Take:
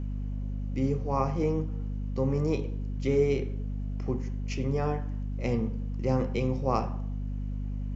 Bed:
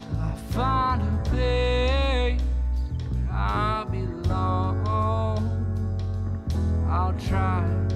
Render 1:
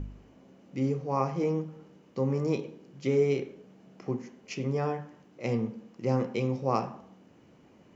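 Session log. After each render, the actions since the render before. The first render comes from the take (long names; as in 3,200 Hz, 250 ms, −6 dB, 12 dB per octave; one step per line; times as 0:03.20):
hum removal 50 Hz, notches 5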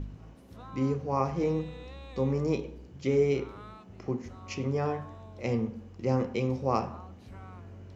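mix in bed −23 dB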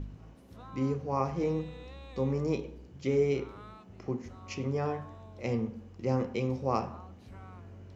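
level −2 dB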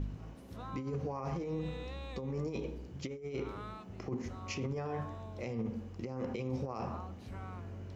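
compressor whose output falls as the input rises −33 dBFS, ratio −0.5
brickwall limiter −28.5 dBFS, peak gain reduction 10.5 dB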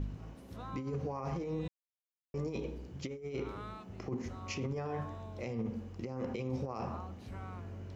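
0:01.68–0:02.34: silence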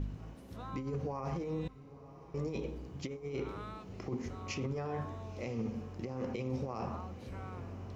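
feedback delay with all-pass diffusion 993 ms, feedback 55%, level −15.5 dB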